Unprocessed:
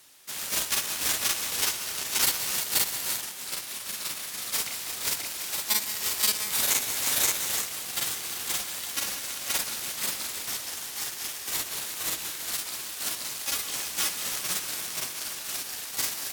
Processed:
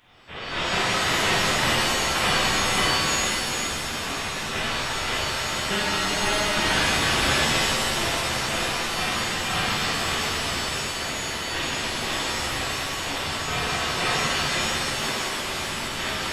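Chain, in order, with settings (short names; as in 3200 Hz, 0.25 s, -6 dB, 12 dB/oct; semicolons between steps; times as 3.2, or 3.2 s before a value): inverted band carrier 3800 Hz; shimmer reverb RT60 2.2 s, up +7 st, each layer -2 dB, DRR -9 dB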